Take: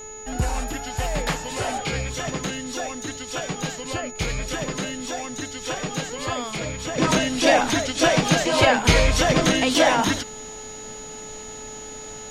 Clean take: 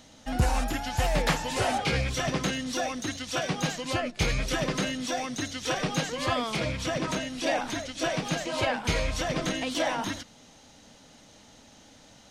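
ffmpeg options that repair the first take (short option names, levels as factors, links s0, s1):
-af "bandreject=f=432.4:t=h:w=4,bandreject=f=864.8:t=h:w=4,bandreject=f=1297.2:t=h:w=4,bandreject=f=1729.6:t=h:w=4,bandreject=f=2162:t=h:w=4,bandreject=f=2594.4:t=h:w=4,bandreject=f=6800:w=30,agate=range=0.0891:threshold=0.0355,asetnsamples=n=441:p=0,asendcmd='6.98 volume volume -10.5dB',volume=1"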